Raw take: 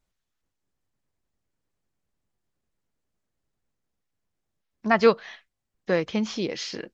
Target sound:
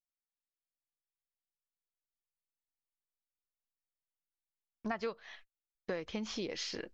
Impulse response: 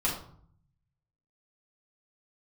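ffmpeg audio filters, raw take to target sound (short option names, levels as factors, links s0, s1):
-af "agate=range=0.0355:threshold=0.00316:ratio=16:detection=peak,asubboost=boost=7:cutoff=55,acompressor=threshold=0.0355:ratio=10,volume=0.562"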